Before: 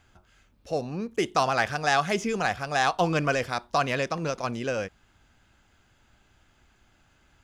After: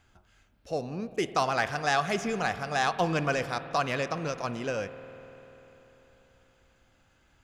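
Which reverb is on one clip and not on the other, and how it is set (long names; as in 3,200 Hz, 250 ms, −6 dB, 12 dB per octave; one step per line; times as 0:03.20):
spring reverb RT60 3.9 s, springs 49 ms, chirp 65 ms, DRR 12 dB
level −3 dB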